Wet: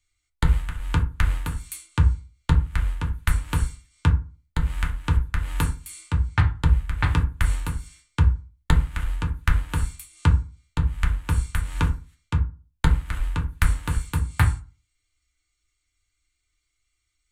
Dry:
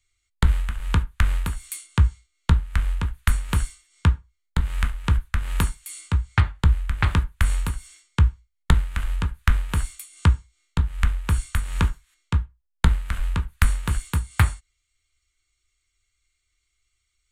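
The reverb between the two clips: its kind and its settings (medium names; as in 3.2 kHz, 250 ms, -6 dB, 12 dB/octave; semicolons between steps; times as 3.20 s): FDN reverb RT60 0.33 s, low-frequency decay 1.2×, high-frequency decay 0.45×, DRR 2 dB; trim -3 dB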